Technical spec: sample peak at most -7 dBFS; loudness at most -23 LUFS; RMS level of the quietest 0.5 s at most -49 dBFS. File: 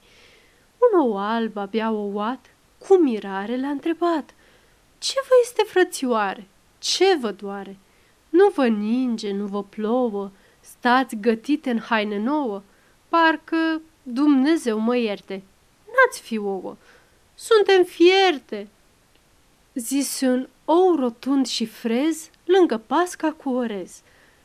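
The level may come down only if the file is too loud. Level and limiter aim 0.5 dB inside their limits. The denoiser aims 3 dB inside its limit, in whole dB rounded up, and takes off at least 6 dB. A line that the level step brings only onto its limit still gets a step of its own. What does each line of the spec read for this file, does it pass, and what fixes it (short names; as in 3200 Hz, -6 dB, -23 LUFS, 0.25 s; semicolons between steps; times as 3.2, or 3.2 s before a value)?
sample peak -5.5 dBFS: fail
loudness -21.5 LUFS: fail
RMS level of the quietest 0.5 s -58 dBFS: OK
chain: gain -2 dB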